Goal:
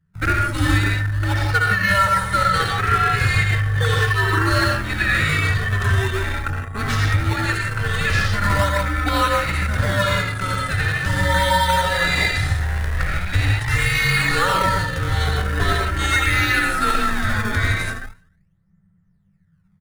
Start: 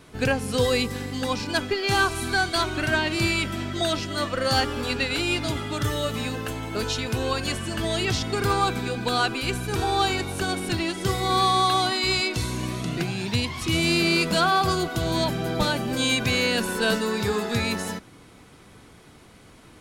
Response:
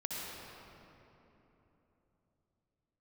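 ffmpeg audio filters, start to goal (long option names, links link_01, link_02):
-filter_complex "[1:a]atrim=start_sample=2205,afade=type=out:start_time=0.23:duration=0.01,atrim=end_sample=10584[link_01];[0:a][link_01]afir=irnorm=-1:irlink=0,anlmdn=25.1,aecho=1:1:100|200|300:0.0631|0.0303|0.0145,asplit=2[link_02][link_03];[link_03]acrusher=samples=25:mix=1:aa=0.000001:lfo=1:lforange=40:lforate=0.41,volume=-4.5dB[link_04];[link_02][link_04]amix=inputs=2:normalize=0,equalizer=frequency=100:width_type=o:width=0.33:gain=10,equalizer=frequency=400:width_type=o:width=0.33:gain=-5,equalizer=frequency=1600:width_type=o:width=0.33:gain=9,equalizer=frequency=10000:width_type=o:width=0.33:gain=6,afreqshift=-200,equalizer=frequency=1800:width_type=o:width=0.35:gain=14.5,alimiter=limit=-7dB:level=0:latency=1:release=453"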